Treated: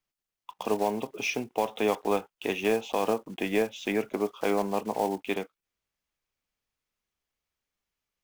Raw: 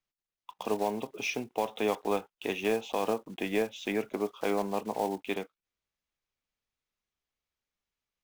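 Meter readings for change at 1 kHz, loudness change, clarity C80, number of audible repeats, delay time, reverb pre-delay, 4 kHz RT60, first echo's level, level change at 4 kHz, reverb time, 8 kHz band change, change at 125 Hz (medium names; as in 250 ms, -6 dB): +3.0 dB, +3.0 dB, no reverb, no echo, no echo, no reverb, no reverb, no echo, +2.0 dB, no reverb, +3.0 dB, +3.0 dB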